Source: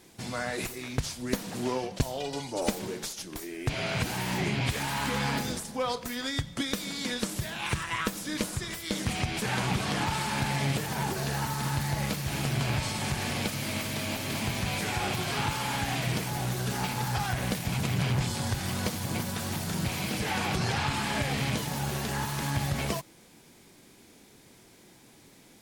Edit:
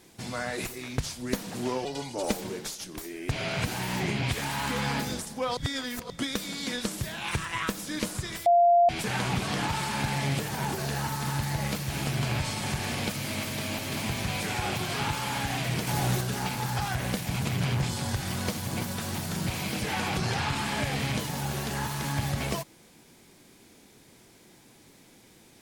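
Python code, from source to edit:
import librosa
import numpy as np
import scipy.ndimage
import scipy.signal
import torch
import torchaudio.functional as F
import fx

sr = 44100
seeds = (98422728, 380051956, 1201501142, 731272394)

y = fx.edit(x, sr, fx.cut(start_s=1.85, length_s=0.38),
    fx.reverse_span(start_s=5.95, length_s=0.53),
    fx.bleep(start_s=8.84, length_s=0.43, hz=694.0, db=-16.0),
    fx.clip_gain(start_s=16.25, length_s=0.34, db=4.5), tone=tone)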